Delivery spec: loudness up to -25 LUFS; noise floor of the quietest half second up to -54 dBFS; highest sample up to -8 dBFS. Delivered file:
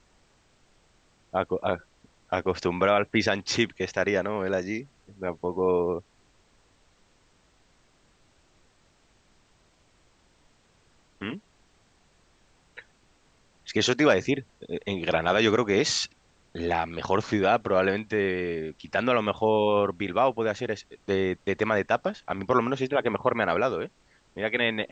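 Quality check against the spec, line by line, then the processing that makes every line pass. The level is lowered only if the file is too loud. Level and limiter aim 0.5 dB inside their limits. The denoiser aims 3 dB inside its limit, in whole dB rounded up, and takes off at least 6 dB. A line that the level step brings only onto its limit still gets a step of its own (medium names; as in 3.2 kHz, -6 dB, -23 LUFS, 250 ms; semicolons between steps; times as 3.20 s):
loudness -26.5 LUFS: pass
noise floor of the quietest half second -63 dBFS: pass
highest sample -7.0 dBFS: fail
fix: peak limiter -8.5 dBFS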